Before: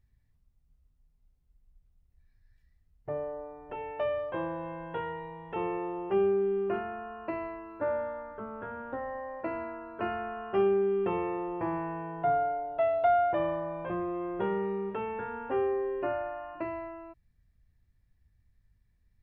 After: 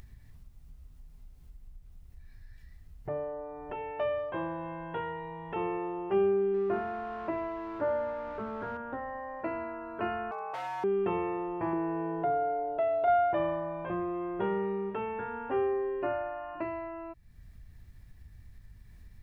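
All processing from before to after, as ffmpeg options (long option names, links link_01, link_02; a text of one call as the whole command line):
ffmpeg -i in.wav -filter_complex "[0:a]asettb=1/sr,asplit=3[link_01][link_02][link_03];[link_01]atrim=end=6.544[link_04];[link_02]atrim=start=6.54:end=8.77,asetpts=PTS-STARTPTS,afade=type=in:duration=0.004:curve=qsin,afade=type=out:start_time=2.226:duration=0.004:curve=qsin,aeval=exprs='val(0)+0.5*0.00944*sgn(val(0))':channel_layout=same,lowpass=1900[link_05];[link_03]atrim=start=8.766[link_06];[link_04][link_05]acrossfade=duration=0.004:curve1=hsin:curve2=qsin[link_07];[link_07][link_06]acrossfade=duration=0.004:curve1=qsin:curve2=hsin,asettb=1/sr,asplit=3[link_08][link_09][link_10];[link_08]atrim=end=10.314[link_11];[link_09]atrim=start=10.31:end=10.84,asetpts=PTS-STARTPTS,afade=type=in:duration=0.004:curve=qsin,afade=type=out:start_time=0.526:duration=0.004:curve=qsin,volume=31dB,asoftclip=hard,volume=-31dB,afreqshift=-260,highpass=frequency=690:width_type=q:width=3.2[link_12];[link_10]atrim=start=10.836[link_13];[link_11][link_12]acrossfade=duration=0.004:curve1=hsin:curve2=qsin[link_14];[link_14][link_13]acrossfade=duration=0.004:curve1=qsin:curve2=hsin,asettb=1/sr,asplit=3[link_15][link_16][link_17];[link_15]atrim=end=11.734[link_18];[link_16]atrim=start=11.73:end=13.08,asetpts=PTS-STARTPTS,afade=type=in:duration=0.004:curve=qsin,afade=type=out:start_time=1.346:duration=0.004:curve=qsin,equalizer=frequency=390:width=1.7:gain=12.5,acompressor=threshold=-29dB:ratio=2:attack=3.2:release=140:knee=1:detection=peak[link_19];[link_17]atrim=start=13.076[link_20];[link_18][link_19]acrossfade=duration=0.004:curve1=hsin:curve2=qsin[link_21];[link_21][link_20]acrossfade=duration=0.004:curve1=qsin:curve2=hsin,bandreject=frequency=510:width=12,acompressor=mode=upward:threshold=-35dB:ratio=2.5" out.wav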